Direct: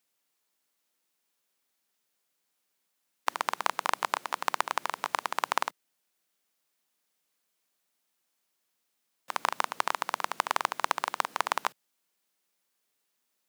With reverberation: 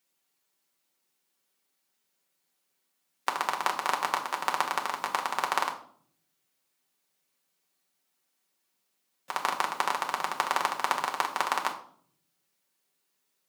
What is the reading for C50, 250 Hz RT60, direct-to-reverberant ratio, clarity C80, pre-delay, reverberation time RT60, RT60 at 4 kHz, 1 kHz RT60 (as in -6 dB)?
11.5 dB, 1.0 s, 1.0 dB, 15.0 dB, 5 ms, 0.55 s, 0.40 s, 0.50 s